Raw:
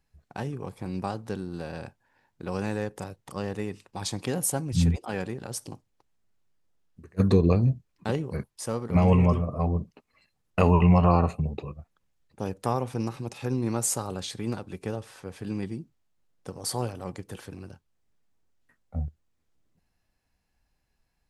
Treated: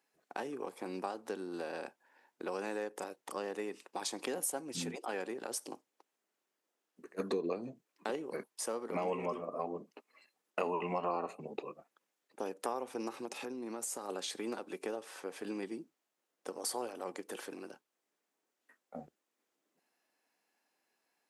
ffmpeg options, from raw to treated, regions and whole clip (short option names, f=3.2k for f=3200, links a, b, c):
-filter_complex "[0:a]asettb=1/sr,asplit=3[a][b][c];[a]atrim=end=13.254[d];[b]atrim=start=13.25:end=14.09,asetpts=PTS-STARTPTS,afade=t=in:d=0.004:c=qsin,afade=t=out:st=0.836:d=0.004:c=qsin,acompressor=threshold=-33dB:ratio=10:attack=3.2:release=140:knee=1:detection=peak,equalizer=f=200:t=o:w=0.89:g=4.5[e];[c]atrim=start=14.086[f];[d][e]acrossfade=d=0.004:c1=hsin:c2=qsin[g];[g][f]acrossfade=d=0.004:c1=qsin:c2=hsin,highpass=f=290:w=0.5412,highpass=f=290:w=1.3066,equalizer=f=4.2k:t=o:w=0.77:g=-2.5,acompressor=threshold=-38dB:ratio=2.5,volume=1dB"